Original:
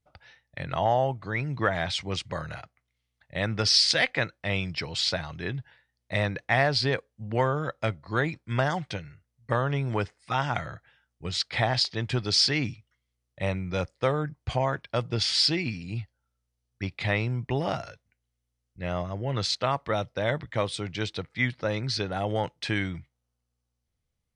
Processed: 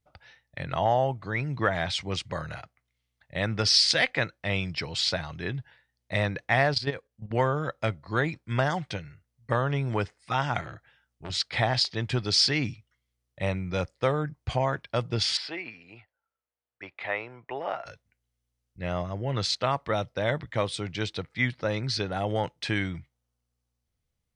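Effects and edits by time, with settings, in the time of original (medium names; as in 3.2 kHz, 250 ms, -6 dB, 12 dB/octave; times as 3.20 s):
6.74–7.31 s: level held to a coarse grid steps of 12 dB
10.61–11.30 s: transformer saturation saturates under 1.1 kHz
15.37–17.86 s: three-band isolator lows -24 dB, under 420 Hz, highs -21 dB, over 2.6 kHz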